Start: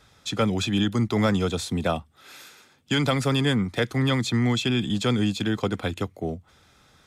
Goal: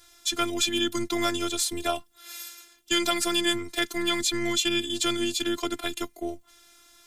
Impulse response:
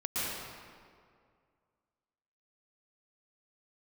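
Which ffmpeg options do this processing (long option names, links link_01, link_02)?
-af "crystalizer=i=3.5:c=0,afftfilt=real='hypot(re,im)*cos(PI*b)':imag='0':win_size=512:overlap=0.75"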